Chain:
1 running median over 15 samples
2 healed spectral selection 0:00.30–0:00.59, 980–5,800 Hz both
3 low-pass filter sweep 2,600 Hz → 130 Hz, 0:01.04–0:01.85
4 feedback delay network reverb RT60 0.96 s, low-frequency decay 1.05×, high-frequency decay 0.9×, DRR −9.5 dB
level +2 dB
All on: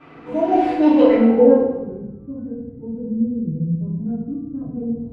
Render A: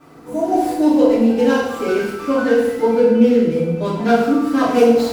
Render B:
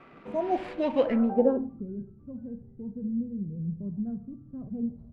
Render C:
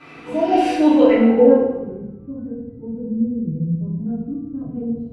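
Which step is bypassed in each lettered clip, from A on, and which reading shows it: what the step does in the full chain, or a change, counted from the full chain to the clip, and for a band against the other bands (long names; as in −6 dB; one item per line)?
3, 2 kHz band +9.0 dB
4, change in momentary loudness spread −2 LU
1, 2 kHz band +3.5 dB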